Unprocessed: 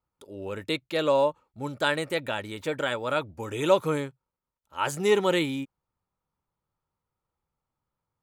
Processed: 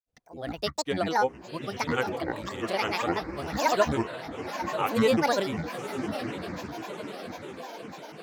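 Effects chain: echo that smears into a reverb 979 ms, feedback 59%, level -8 dB; granulator, pitch spread up and down by 12 st

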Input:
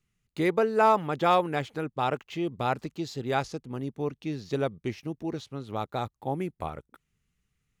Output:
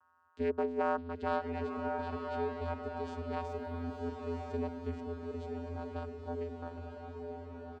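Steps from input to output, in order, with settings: comb 2.9 ms, depth 33%; whistle 1.1 kHz -56 dBFS; vocoder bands 8, square 84.7 Hz; 3.45–3.99 s: small samples zeroed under -59 dBFS; on a send: echo that smears into a reverb 1016 ms, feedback 53%, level -3.5 dB; on the sum: trim -8.5 dB

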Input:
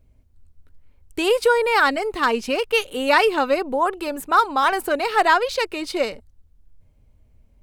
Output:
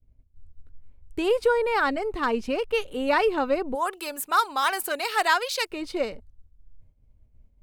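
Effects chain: expander -49 dBFS; tilt EQ -2 dB/octave, from 3.74 s +3 dB/octave, from 5.70 s -1.5 dB/octave; trim -6 dB

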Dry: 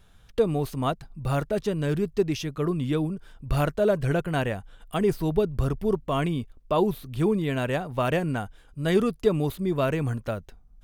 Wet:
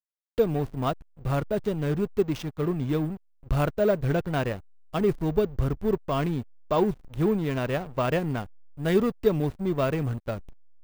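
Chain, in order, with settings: careless resampling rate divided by 2×, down none, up hold; hysteresis with a dead band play -29 dBFS

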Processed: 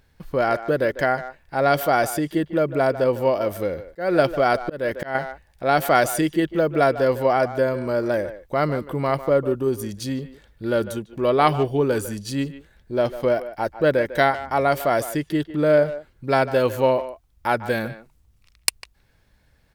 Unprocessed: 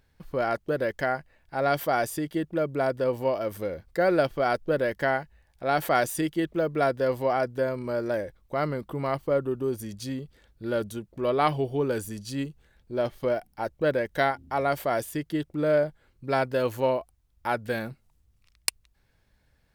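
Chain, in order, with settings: speakerphone echo 150 ms, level -13 dB; 3.76–5.15 s: slow attack 252 ms; trim +6 dB

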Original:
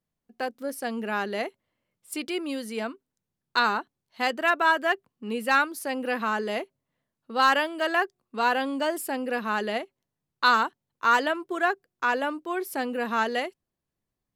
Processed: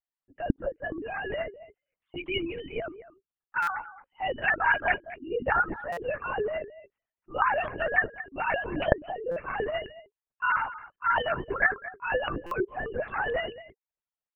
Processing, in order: formants replaced by sine waves; spectral gate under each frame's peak -25 dB strong; on a send: delay 220 ms -16 dB; on the sum: LPC vocoder at 8 kHz whisper; buffer glitch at 3.62/5.92/9.31/12.46 s, samples 256, times 8; trim -3 dB

